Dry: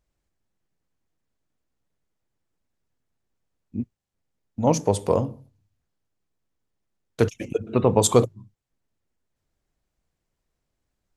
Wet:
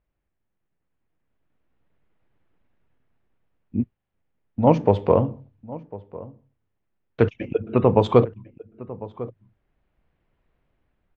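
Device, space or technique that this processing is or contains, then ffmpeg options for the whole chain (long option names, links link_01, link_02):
action camera in a waterproof case: -filter_complex "[0:a]lowpass=frequency=2900:width=0.5412,lowpass=frequency=2900:width=1.3066,asplit=2[link_01][link_02];[link_02]adelay=1050,volume=-18dB,highshelf=frequency=4000:gain=-23.6[link_03];[link_01][link_03]amix=inputs=2:normalize=0,dynaudnorm=framelen=200:gausssize=17:maxgain=14dB,volume=-1dB" -ar 24000 -c:a aac -b:a 96k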